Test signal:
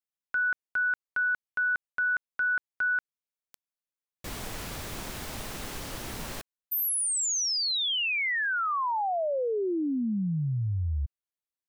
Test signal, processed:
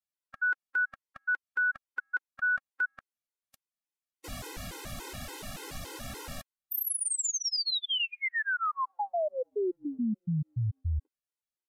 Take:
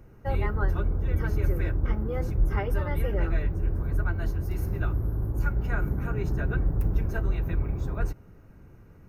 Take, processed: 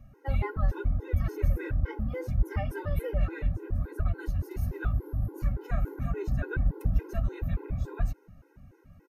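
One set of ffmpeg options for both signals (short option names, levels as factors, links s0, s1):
-af "aresample=32000,aresample=44100,afftfilt=real='re*gt(sin(2*PI*3.5*pts/sr)*(1-2*mod(floor(b*sr/1024/270),2)),0)':imag='im*gt(sin(2*PI*3.5*pts/sr)*(1-2*mod(floor(b*sr/1024/270),2)),0)':win_size=1024:overlap=0.75"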